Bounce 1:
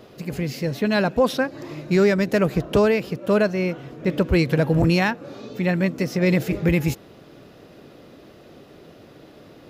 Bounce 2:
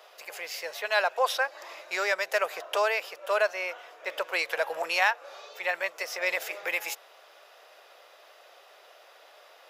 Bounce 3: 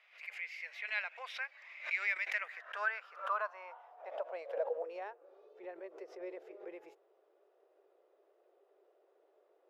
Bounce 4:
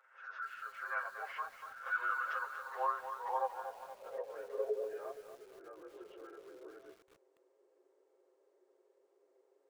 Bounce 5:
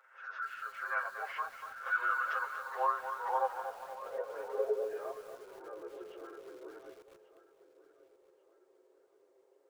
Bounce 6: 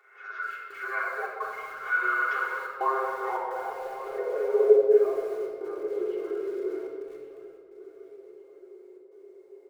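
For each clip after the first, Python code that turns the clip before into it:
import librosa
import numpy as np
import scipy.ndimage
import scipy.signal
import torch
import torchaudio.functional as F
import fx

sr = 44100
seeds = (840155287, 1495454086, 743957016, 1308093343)

y1 = scipy.signal.sosfilt(scipy.signal.cheby2(4, 50, 250.0, 'highpass', fs=sr, output='sos'), x)
y1 = fx.notch(y1, sr, hz=4200.0, q=17.0)
y2 = fx.low_shelf(y1, sr, hz=160.0, db=10.5)
y2 = fx.filter_sweep_bandpass(y2, sr, from_hz=2200.0, to_hz=380.0, start_s=2.28, end_s=5.2, q=6.4)
y2 = fx.pre_swell(y2, sr, db_per_s=140.0)
y3 = fx.partial_stretch(y2, sr, pct=80)
y3 = y3 + 0.87 * np.pad(y3, (int(7.5 * sr / 1000.0), 0))[:len(y3)]
y3 = fx.echo_crushed(y3, sr, ms=237, feedback_pct=55, bits=9, wet_db=-9)
y3 = y3 * librosa.db_to_amplitude(-1.5)
y4 = fx.echo_feedback(y3, sr, ms=1138, feedback_pct=35, wet_db=-16.5)
y4 = y4 * librosa.db_to_amplitude(3.5)
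y5 = fx.small_body(y4, sr, hz=(400.0, 2100.0), ring_ms=55, db=16)
y5 = fx.step_gate(y5, sr, bpm=107, pattern='xxxx.xxxx.xxxxx', floor_db=-60.0, edge_ms=4.5)
y5 = fx.room_shoebox(y5, sr, seeds[0], volume_m3=2400.0, walls='mixed', distance_m=3.4)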